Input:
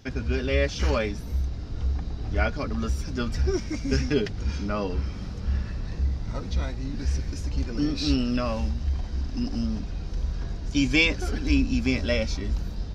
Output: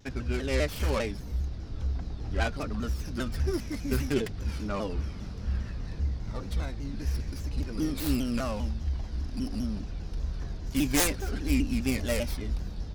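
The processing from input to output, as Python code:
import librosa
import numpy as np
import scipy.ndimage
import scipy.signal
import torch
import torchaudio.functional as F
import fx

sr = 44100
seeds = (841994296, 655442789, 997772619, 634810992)

y = fx.tracing_dist(x, sr, depth_ms=0.45)
y = fx.vibrato_shape(y, sr, shape='saw_down', rate_hz=5.0, depth_cents=160.0)
y = y * 10.0 ** (-4.0 / 20.0)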